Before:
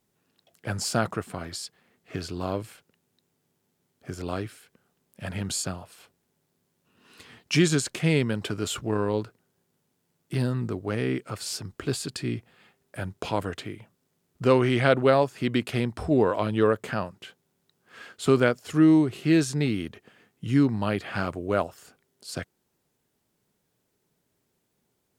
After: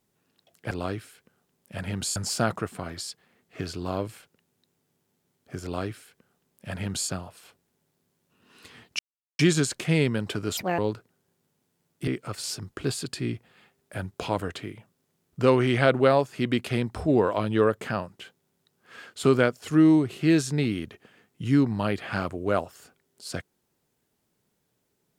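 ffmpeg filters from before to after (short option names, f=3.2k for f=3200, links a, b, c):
-filter_complex "[0:a]asplit=7[a][b][c][d][e][f][g];[a]atrim=end=0.712[h];[b]atrim=start=4.188:end=5.642[i];[c]atrim=start=0.708:end=7.54,asetpts=PTS-STARTPTS,afade=t=out:st=6.828:d=0.004:c=hsin,apad=pad_dur=0.4[j];[d]atrim=start=7.54:end=8.724,asetpts=PTS-STARTPTS,afade=t=in:d=0.004:c=hsin[k];[e]atrim=start=8.72:end=9.08,asetpts=PTS-STARTPTS,asetrate=74088,aresample=44100[l];[f]atrim=start=9.076:end=10.372[m];[g]atrim=start=11.098[n];[h][i]acrossfade=d=0.004:c1=hsin:c2=hsin[o];[j][k]concat=n=2:v=0:a=1[p];[o][p]acrossfade=d=0.004:c1=hsin:c2=hsin[q];[q][l]acrossfade=d=0.004:c1=hsin:c2=hsin[r];[r][m]acrossfade=d=0.004:c1=hsin:c2=hsin[s];[s][n]acrossfade=d=0.004:c1=hsin:c2=hsin"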